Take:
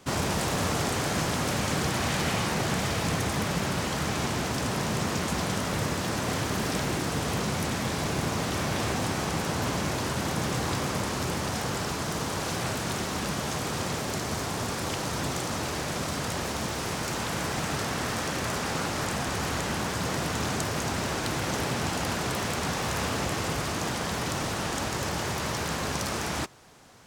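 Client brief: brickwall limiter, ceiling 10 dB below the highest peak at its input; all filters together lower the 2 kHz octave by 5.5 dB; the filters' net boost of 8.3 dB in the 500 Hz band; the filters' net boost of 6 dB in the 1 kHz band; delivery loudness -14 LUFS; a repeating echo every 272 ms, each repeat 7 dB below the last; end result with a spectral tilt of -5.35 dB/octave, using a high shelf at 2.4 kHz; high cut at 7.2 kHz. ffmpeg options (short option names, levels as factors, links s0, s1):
-af "lowpass=7200,equalizer=f=500:t=o:g=9,equalizer=f=1000:t=o:g=7.5,equalizer=f=2000:t=o:g=-8.5,highshelf=f=2400:g=-5.5,alimiter=limit=0.0841:level=0:latency=1,aecho=1:1:272|544|816|1088|1360:0.447|0.201|0.0905|0.0407|0.0183,volume=5.96"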